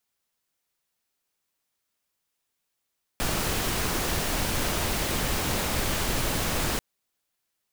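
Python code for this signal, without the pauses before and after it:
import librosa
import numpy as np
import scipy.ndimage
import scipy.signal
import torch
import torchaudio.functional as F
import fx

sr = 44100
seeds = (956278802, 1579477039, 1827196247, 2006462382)

y = fx.noise_colour(sr, seeds[0], length_s=3.59, colour='pink', level_db=-27.0)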